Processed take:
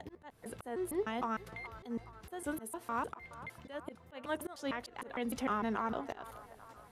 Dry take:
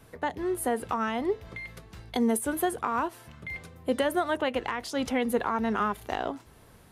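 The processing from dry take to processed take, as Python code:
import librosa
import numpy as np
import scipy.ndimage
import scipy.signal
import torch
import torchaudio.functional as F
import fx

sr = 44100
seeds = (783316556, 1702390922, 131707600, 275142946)

y = fx.block_reorder(x, sr, ms=152.0, group=3)
y = fx.auto_swell(y, sr, attack_ms=229.0)
y = fx.echo_wet_bandpass(y, sr, ms=421, feedback_pct=57, hz=960.0, wet_db=-14.5)
y = y * librosa.db_to_amplitude(-7.0)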